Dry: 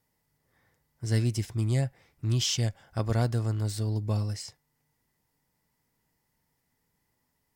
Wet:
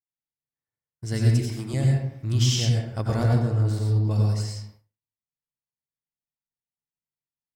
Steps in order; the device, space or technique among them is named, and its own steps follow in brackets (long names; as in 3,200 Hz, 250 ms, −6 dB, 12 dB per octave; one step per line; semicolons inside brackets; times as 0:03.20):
0:01.31–0:01.74: high-pass filter 260 Hz 12 dB per octave
0:03.23–0:04.11: high-shelf EQ 3,400 Hz −8.5 dB
bathroom (convolution reverb RT60 0.75 s, pre-delay 85 ms, DRR −1.5 dB)
downward expander −45 dBFS